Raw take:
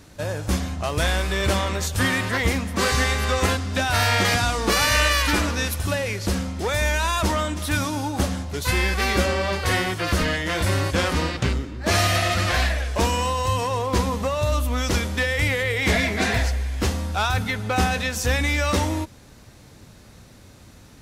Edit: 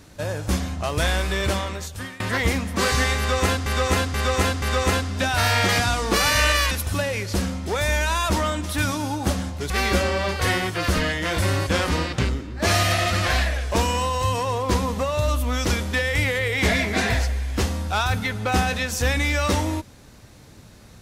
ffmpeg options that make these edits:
-filter_complex "[0:a]asplit=7[a][b][c][d][e][f][g];[a]atrim=end=2.2,asetpts=PTS-STARTPTS,afade=t=out:st=1.32:d=0.88:silence=0.0707946[h];[b]atrim=start=2.2:end=3.662,asetpts=PTS-STARTPTS,afade=t=in:d=0.004:c=hsin:silence=0.0707946[i];[c]atrim=start=3.178:end=3.662[j];[d]atrim=start=3.178:end=3.662[k];[e]atrim=start=3.178:end=5.272[l];[f]atrim=start=5.638:end=8.632[m];[g]atrim=start=8.938[n];[h][i]concat=n=2:v=0:a=1[o];[o][j]acrossfade=d=0.004:c1=hsin:c2=hsin[p];[p][k]acrossfade=d=0.004:c1=hsin:c2=hsin[q];[q][l]acrossfade=d=0.004:c1=hsin:c2=hsin[r];[r][m]acrossfade=d=0.004:c1=hsin:c2=hsin[s];[s][n]acrossfade=d=0.004:c1=hsin:c2=hsin"

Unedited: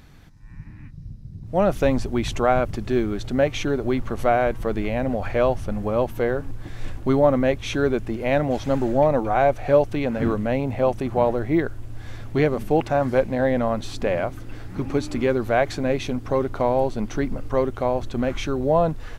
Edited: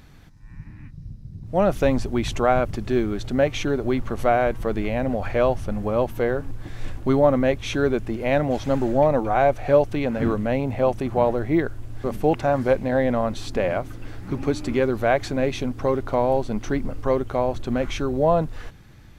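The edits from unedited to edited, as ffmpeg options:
-filter_complex "[0:a]asplit=2[a][b];[a]atrim=end=12.042[c];[b]atrim=start=12.508[d];[c][d]acrossfade=d=0.004:c1=hsin:c2=hsin"

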